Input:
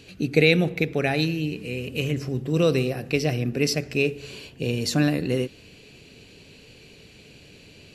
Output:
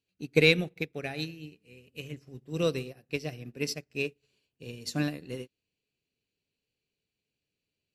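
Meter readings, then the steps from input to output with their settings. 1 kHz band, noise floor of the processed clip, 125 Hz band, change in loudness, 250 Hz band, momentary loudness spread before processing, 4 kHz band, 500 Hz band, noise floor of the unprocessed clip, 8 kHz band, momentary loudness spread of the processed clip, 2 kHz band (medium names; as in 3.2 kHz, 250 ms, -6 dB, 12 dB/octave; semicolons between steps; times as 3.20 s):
-10.5 dB, under -85 dBFS, -10.5 dB, -6.5 dB, -10.0 dB, 10 LU, -5.5 dB, -7.5 dB, -50 dBFS, -8.5 dB, 22 LU, -5.0 dB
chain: treble shelf 2.6 kHz +4.5 dB; in parallel at -7 dB: saturation -14.5 dBFS, distortion -13 dB; on the sum: upward expansion 2.5:1, over -37 dBFS; trim -5 dB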